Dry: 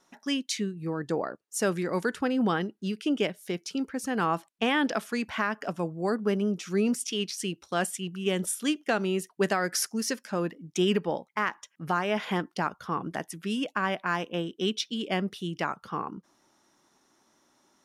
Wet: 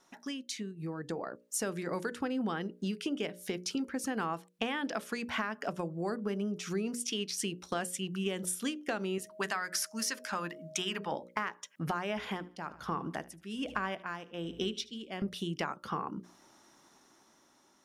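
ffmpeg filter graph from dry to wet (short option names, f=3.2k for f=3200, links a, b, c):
-filter_complex "[0:a]asettb=1/sr,asplit=3[a][b][c];[a]atrim=end=9.184[d];[b]atrim=start=9.18:end=11.12,asetpts=PTS-STARTPTS,afade=t=in:d=0.004:c=qsin,afade=t=out:st=1.936:d=0.004:c=qsin,lowshelf=f=750:t=q:w=1.5:g=-8.5,bandreject=f=50:t=h:w=6,bandreject=f=100:t=h:w=6,bandreject=f=150:t=h:w=6,bandreject=f=200:t=h:w=6,bandreject=f=250:t=h:w=6,bandreject=f=300:t=h:w=6,bandreject=f=350:t=h:w=6,bandreject=f=400:t=h:w=6,bandreject=f=450:t=h:w=6,bandreject=f=500:t=h:w=6,aeval=exprs='val(0)+0.00224*sin(2*PI*630*n/s)':c=same[e];[c]atrim=start=11.116[f];[d][e]acrossfade=d=0.004:c1=hsin:c2=qsin[g];[g][f]acrossfade=d=0.004:c1=qsin:c2=hsin,asettb=1/sr,asplit=3[h][i][j];[h]atrim=end=12.174[k];[i]atrim=start=12.17:end=15.22,asetpts=PTS-STARTPTS,afade=t=in:d=0.004:c=qsin,afade=t=out:st=3.046:d=0.004:c=qsin,aeval=exprs='val(0)+0.00447*(sin(2*PI*60*n/s)+sin(2*PI*2*60*n/s)/2+sin(2*PI*3*60*n/s)/3+sin(2*PI*4*60*n/s)/4+sin(2*PI*5*60*n/s)/5)':c=same,aecho=1:1:76|152|228:0.112|0.0426|0.0162,atrim=end_sample=134505,aeval=exprs='val(0)*pow(10,-18*(0.5-0.5*cos(2*PI*1.2*n/s))/20)':c=same[l];[j]atrim=start=15.216[m];[k][l]acrossfade=d=0.004:c1=hsin:c2=qsin[n];[n][m]acrossfade=d=0.004:c1=qsin:c2=hsin,acompressor=threshold=-37dB:ratio=6,bandreject=f=60:t=h:w=6,bandreject=f=120:t=h:w=6,bandreject=f=180:t=h:w=6,bandreject=f=240:t=h:w=6,bandreject=f=300:t=h:w=6,bandreject=f=360:t=h:w=6,bandreject=f=420:t=h:w=6,bandreject=f=480:t=h:w=6,bandreject=f=540:t=h:w=6,bandreject=f=600:t=h:w=6,dynaudnorm=f=470:g=5:m=5.5dB"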